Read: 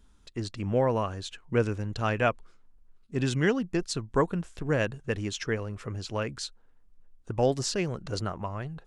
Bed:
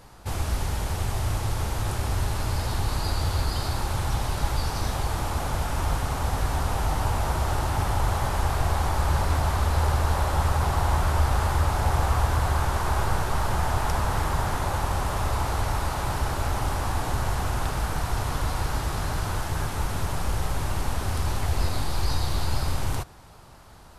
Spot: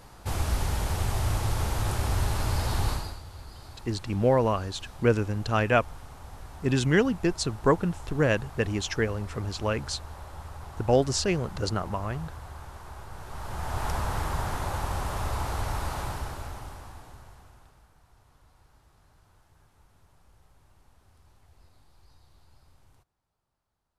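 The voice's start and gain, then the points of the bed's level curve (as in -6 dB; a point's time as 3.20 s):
3.50 s, +3.0 dB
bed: 2.90 s -0.5 dB
3.23 s -18.5 dB
13.09 s -18.5 dB
13.85 s -4.5 dB
15.99 s -4.5 dB
17.94 s -33.5 dB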